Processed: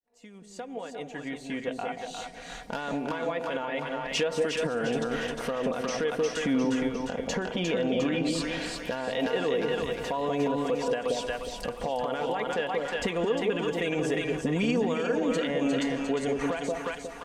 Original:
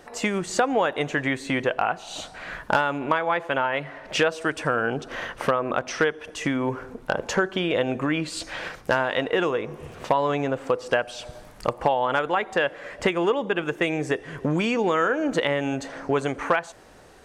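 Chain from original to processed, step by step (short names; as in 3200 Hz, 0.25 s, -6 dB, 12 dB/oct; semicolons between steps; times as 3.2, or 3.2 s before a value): opening faded in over 4.71 s; 6.36–8.53 high shelf 7300 Hz -7.5 dB; split-band echo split 790 Hz, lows 0.181 s, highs 0.354 s, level -4.5 dB; limiter -18 dBFS, peak gain reduction 11 dB; bell 1300 Hz -8.5 dB 1.4 oct; comb 4.2 ms, depth 51%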